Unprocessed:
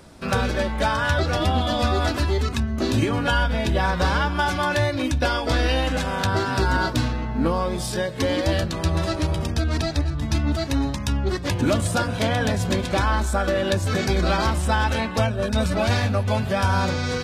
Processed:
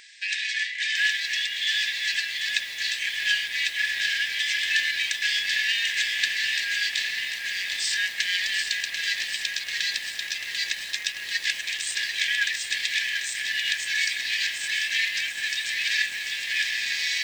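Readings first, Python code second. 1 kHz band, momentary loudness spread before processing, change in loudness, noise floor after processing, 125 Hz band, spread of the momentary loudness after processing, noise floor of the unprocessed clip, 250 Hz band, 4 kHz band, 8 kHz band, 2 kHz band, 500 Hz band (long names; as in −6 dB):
below −25 dB, 3 LU, −2.0 dB, −35 dBFS, below −40 dB, 5 LU, −29 dBFS, below −35 dB, +6.0 dB, +3.0 dB, +4.0 dB, below −30 dB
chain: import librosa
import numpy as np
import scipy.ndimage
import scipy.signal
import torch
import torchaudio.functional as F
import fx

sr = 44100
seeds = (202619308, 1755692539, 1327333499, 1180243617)

p1 = fx.high_shelf(x, sr, hz=4900.0, db=-10.0)
p2 = fx.over_compress(p1, sr, threshold_db=-24.0, ratio=-0.5)
p3 = p1 + F.gain(torch.from_numpy(p2), -2.0).numpy()
p4 = np.clip(10.0 ** (15.5 / 20.0) * p3, -1.0, 1.0) / 10.0 ** (15.5 / 20.0)
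p5 = fx.brickwall_bandpass(p4, sr, low_hz=1600.0, high_hz=8700.0)
p6 = p5 + 10.0 ** (-17.5 / 20.0) * np.pad(p5, (int(829 * sr / 1000.0), 0))[:len(p5)]
p7 = fx.echo_crushed(p6, sr, ms=741, feedback_pct=80, bits=8, wet_db=-7.0)
y = F.gain(torch.from_numpy(p7), 5.0).numpy()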